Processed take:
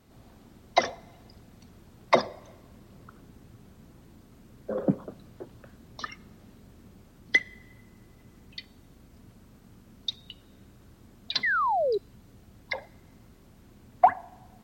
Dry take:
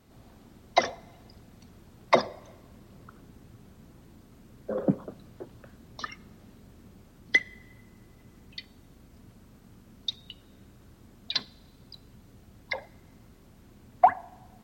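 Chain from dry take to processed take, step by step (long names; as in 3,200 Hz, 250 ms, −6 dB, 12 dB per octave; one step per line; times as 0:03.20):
sound drawn into the spectrogram fall, 0:11.43–0:11.98, 380–2,100 Hz −25 dBFS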